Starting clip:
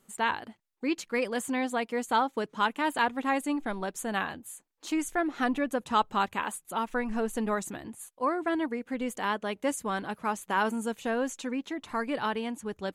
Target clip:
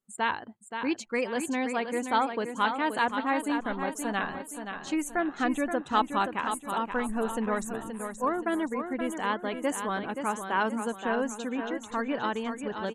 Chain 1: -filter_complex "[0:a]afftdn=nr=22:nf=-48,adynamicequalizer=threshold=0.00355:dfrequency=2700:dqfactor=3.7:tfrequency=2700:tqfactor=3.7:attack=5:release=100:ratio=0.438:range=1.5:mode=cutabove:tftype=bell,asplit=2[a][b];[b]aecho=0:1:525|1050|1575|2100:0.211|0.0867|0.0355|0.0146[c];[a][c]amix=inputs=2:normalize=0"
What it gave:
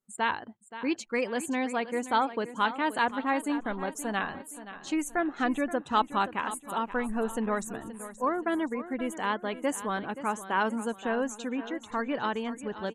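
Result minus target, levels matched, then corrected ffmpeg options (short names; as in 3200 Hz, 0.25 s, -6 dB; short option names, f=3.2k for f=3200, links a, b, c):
echo-to-direct -6 dB
-filter_complex "[0:a]afftdn=nr=22:nf=-48,adynamicequalizer=threshold=0.00355:dfrequency=2700:dqfactor=3.7:tfrequency=2700:tqfactor=3.7:attack=5:release=100:ratio=0.438:range=1.5:mode=cutabove:tftype=bell,asplit=2[a][b];[b]aecho=0:1:525|1050|1575|2100|2625:0.422|0.173|0.0709|0.0291|0.0119[c];[a][c]amix=inputs=2:normalize=0"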